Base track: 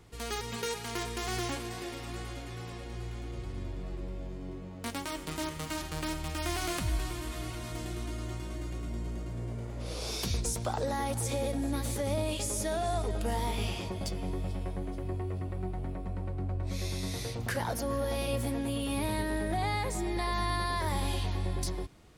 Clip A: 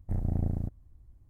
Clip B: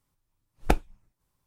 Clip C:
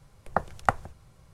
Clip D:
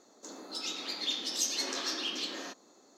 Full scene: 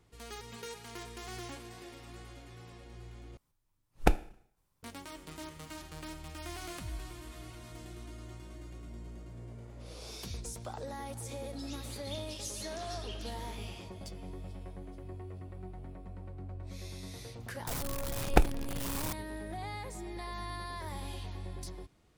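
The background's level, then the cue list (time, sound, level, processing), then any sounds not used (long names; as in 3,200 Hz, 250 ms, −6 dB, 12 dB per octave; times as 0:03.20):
base track −9.5 dB
0:03.37: overwrite with B −2 dB + four-comb reverb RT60 0.61 s, combs from 26 ms, DRR 17.5 dB
0:11.04: mix in D −12.5 dB
0:17.67: mix in B −1 dB + converter with a step at zero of −29 dBFS
not used: A, C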